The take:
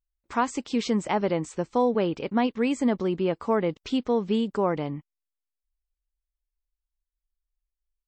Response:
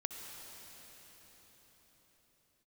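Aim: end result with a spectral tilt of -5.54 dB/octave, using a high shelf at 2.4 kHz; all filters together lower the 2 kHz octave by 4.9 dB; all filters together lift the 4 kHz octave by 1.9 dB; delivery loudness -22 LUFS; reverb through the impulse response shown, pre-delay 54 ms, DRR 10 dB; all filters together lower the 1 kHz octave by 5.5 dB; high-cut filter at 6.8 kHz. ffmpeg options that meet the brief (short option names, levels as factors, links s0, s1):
-filter_complex "[0:a]lowpass=6800,equalizer=f=1000:t=o:g=-6.5,equalizer=f=2000:t=o:g=-7.5,highshelf=f=2400:g=4,equalizer=f=4000:t=o:g=3,asplit=2[s0][s1];[1:a]atrim=start_sample=2205,adelay=54[s2];[s1][s2]afir=irnorm=-1:irlink=0,volume=0.316[s3];[s0][s3]amix=inputs=2:normalize=0,volume=1.78"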